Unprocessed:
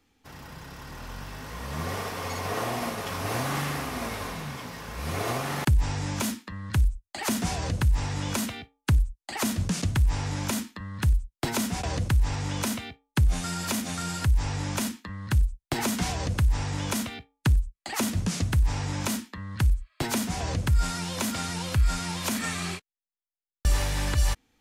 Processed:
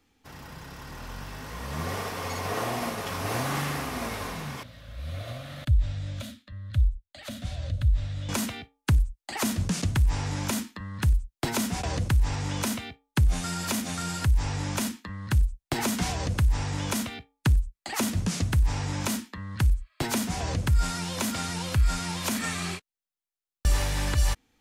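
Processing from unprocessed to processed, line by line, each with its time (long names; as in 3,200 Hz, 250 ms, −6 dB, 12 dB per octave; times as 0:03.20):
0:04.63–0:08.29: drawn EQ curve 110 Hz 0 dB, 180 Hz −13 dB, 280 Hz −10 dB, 400 Hz −28 dB, 580 Hz −2 dB, 880 Hz −24 dB, 1,300 Hz −12 dB, 2,600 Hz −11 dB, 3,700 Hz −3 dB, 5,300 Hz −16 dB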